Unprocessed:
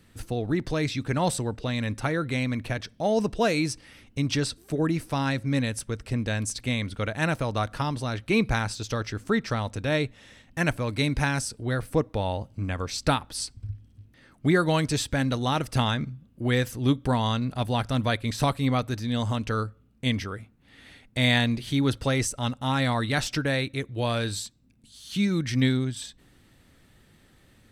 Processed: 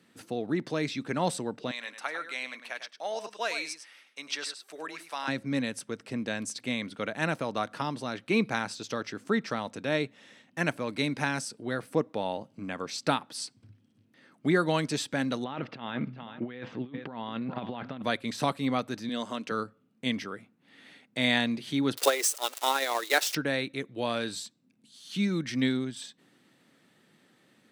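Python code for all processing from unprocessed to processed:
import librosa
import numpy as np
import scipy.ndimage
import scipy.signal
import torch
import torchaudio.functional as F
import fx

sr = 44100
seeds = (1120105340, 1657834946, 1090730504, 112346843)

y = fx.chain(x, sr, fx.highpass(hz=870.0, slope=12),
    fx.echo_single(ms=102, db=-10.0), at=(1.71, 5.28))
y = fx.chain(y, sr, fx.lowpass(hz=3300.0, slope=24),
    fx.echo_feedback(ms=408, feedback_pct=32, wet_db=-20.5),
    fx.over_compress(threshold_db=-29.0, ratio=-0.5), at=(15.44, 18.02))
y = fx.chain(y, sr, fx.highpass(hz=240.0, slope=12),
    fx.notch(hz=830.0, q=7.4), at=(19.09, 19.51))
y = fx.chain(y, sr, fx.crossing_spikes(level_db=-21.5),
    fx.steep_highpass(hz=340.0, slope=48),
    fx.transient(attack_db=12, sustain_db=-7), at=(21.97, 23.35))
y = scipy.signal.sosfilt(scipy.signal.butter(4, 170.0, 'highpass', fs=sr, output='sos'), y)
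y = fx.high_shelf(y, sr, hz=9800.0, db=-8.5)
y = y * 10.0 ** (-2.5 / 20.0)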